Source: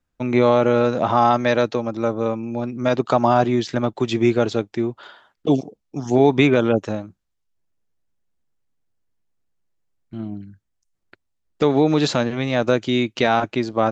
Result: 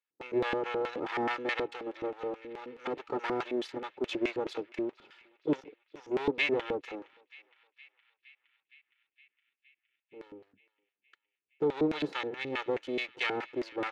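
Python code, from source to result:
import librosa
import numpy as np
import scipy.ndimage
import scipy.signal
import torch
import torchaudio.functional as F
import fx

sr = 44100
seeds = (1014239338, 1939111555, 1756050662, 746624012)

y = fx.lower_of_two(x, sr, delay_ms=2.3)
y = scipy.signal.sosfilt(scipy.signal.butter(2, 170.0, 'highpass', fs=sr, output='sos'), y)
y = fx.filter_lfo_bandpass(y, sr, shape='square', hz=4.7, low_hz=290.0, high_hz=2500.0, q=1.4)
y = fx.echo_banded(y, sr, ms=465, feedback_pct=77, hz=2500.0, wet_db=-21)
y = y * 10.0 ** (-5.5 / 20.0)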